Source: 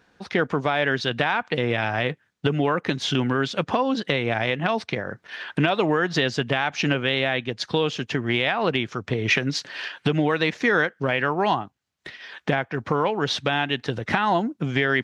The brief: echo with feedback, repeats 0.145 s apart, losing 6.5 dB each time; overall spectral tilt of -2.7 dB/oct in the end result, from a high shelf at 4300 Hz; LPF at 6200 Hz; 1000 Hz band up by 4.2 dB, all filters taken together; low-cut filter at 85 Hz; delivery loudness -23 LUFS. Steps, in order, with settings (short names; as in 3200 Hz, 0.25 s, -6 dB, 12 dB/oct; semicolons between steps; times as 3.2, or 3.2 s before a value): HPF 85 Hz; LPF 6200 Hz; bell 1000 Hz +5 dB; high shelf 4300 Hz +7 dB; feedback echo 0.145 s, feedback 47%, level -6.5 dB; gain -2.5 dB